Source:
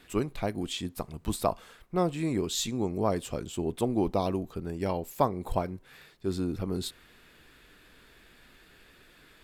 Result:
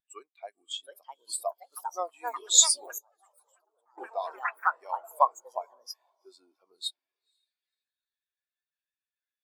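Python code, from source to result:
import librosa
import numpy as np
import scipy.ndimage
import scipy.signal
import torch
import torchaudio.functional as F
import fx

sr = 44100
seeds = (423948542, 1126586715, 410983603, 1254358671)

y = fx.peak_eq(x, sr, hz=1600.0, db=-7.5, octaves=1.7, at=(0.61, 1.97), fade=0.02)
y = fx.echo_diffused(y, sr, ms=503, feedback_pct=52, wet_db=-13.5)
y = fx.echo_pitch(y, sr, ms=763, semitones=5, count=3, db_per_echo=-3.0)
y = fx.level_steps(y, sr, step_db=20, at=(2.98, 3.98))
y = scipy.signal.sosfilt(scipy.signal.butter(2, 900.0, 'highpass', fs=sr, output='sos'), y)
y = fx.high_shelf(y, sr, hz=4000.0, db=11.5)
y = fx.spectral_expand(y, sr, expansion=2.5)
y = F.gain(torch.from_numpy(y), 6.5).numpy()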